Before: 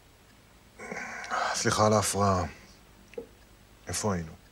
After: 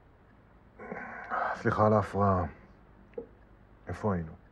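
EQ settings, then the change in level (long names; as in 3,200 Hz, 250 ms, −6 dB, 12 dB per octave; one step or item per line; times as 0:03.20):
high-frequency loss of the air 320 metres
flat-topped bell 3,700 Hz −9.5 dB
0.0 dB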